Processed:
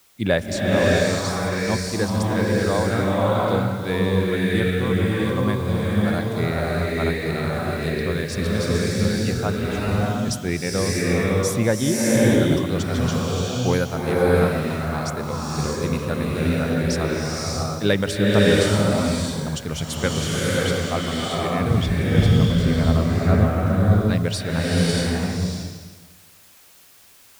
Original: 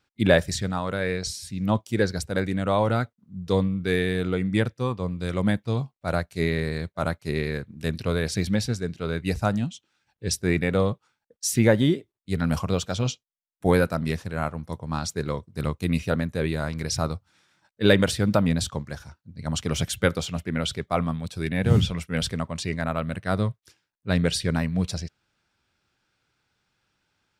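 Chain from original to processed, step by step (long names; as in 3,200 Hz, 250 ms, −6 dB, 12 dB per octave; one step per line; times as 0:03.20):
0:21.86–0:23.44: spectral tilt −3 dB per octave
background noise white −55 dBFS
slow-attack reverb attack 630 ms, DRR −5.5 dB
level −2 dB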